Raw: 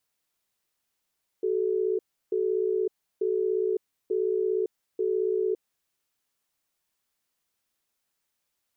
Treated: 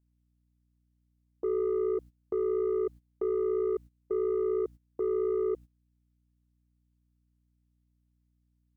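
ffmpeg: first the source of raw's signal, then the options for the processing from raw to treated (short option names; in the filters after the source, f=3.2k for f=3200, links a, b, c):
-f lavfi -i "aevalsrc='0.0501*(sin(2*PI*376*t)+sin(2*PI*433*t))*clip(min(mod(t,0.89),0.56-mod(t,0.89))/0.005,0,1)':d=4.17:s=44100"
-af "asoftclip=type=tanh:threshold=-23dB,aeval=exprs='val(0)+0.002*(sin(2*PI*60*n/s)+sin(2*PI*2*60*n/s)/2+sin(2*PI*3*60*n/s)/3+sin(2*PI*4*60*n/s)/4+sin(2*PI*5*60*n/s)/5)':c=same,agate=range=-17dB:threshold=-42dB:ratio=16:detection=peak"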